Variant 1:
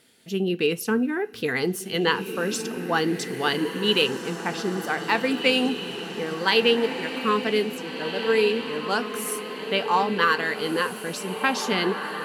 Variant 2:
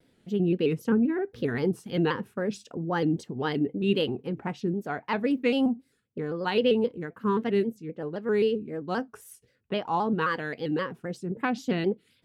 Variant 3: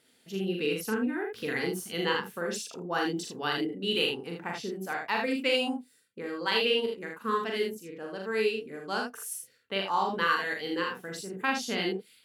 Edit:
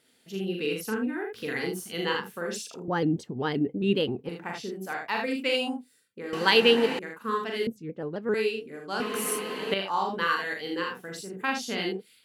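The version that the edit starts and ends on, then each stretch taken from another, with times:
3
0:02.88–0:04.29: punch in from 2
0:06.33–0:06.99: punch in from 1
0:07.67–0:08.34: punch in from 2
0:09.00–0:09.74: punch in from 1

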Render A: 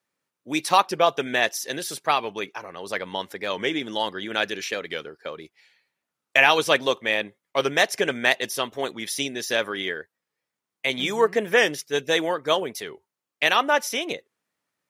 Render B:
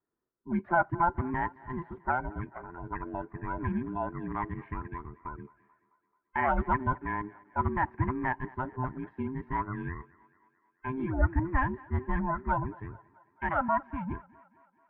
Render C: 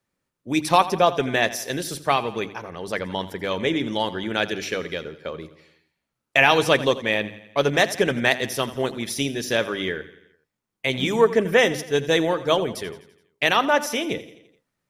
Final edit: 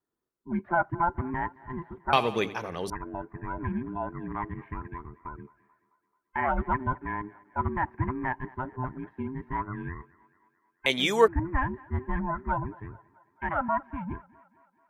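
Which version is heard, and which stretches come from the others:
B
0:02.13–0:02.90: punch in from C
0:10.86–0:11.28: punch in from A

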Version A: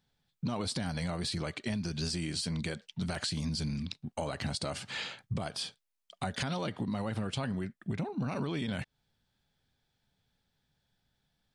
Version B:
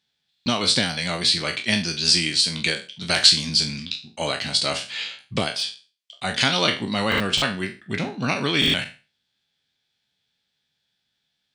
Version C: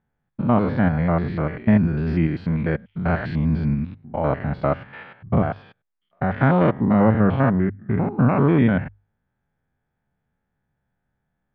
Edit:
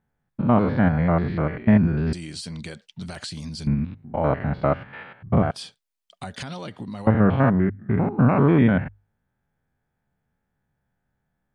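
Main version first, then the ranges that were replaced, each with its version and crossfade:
C
0:02.13–0:03.67: punch in from A
0:05.51–0:07.07: punch in from A
not used: B

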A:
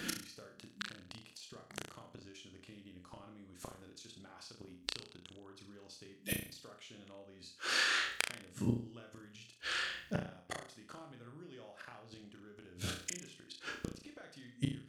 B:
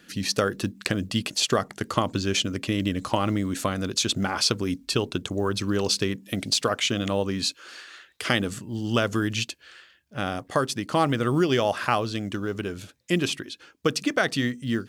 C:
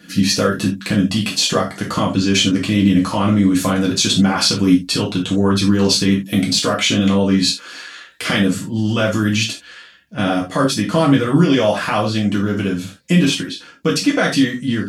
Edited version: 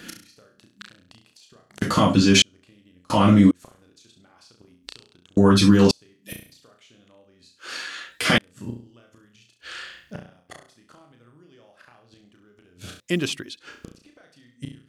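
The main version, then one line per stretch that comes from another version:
A
0:01.82–0:02.42: punch in from C
0:03.10–0:03.51: punch in from C
0:05.37–0:05.91: punch in from C
0:07.77–0:08.38: punch in from C
0:13.00–0:13.57: punch in from B

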